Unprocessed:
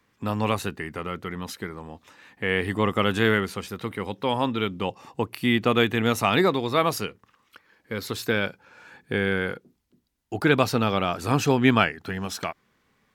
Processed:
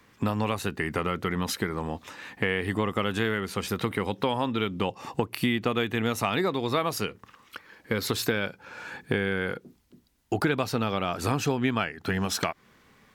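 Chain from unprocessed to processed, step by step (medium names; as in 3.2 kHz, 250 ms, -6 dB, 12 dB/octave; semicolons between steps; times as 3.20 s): compression 6:1, threshold -32 dBFS, peak gain reduction 18 dB; trim +8.5 dB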